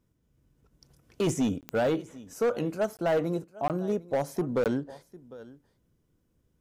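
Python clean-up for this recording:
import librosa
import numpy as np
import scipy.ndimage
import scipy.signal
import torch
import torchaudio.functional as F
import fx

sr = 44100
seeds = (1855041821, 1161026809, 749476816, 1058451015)

y = fx.fix_declip(x, sr, threshold_db=-21.0)
y = fx.fix_declick_ar(y, sr, threshold=10.0)
y = fx.fix_interpolate(y, sr, at_s=(1.61, 2.97, 3.68, 4.64), length_ms=18.0)
y = fx.fix_echo_inverse(y, sr, delay_ms=752, level_db=-20.5)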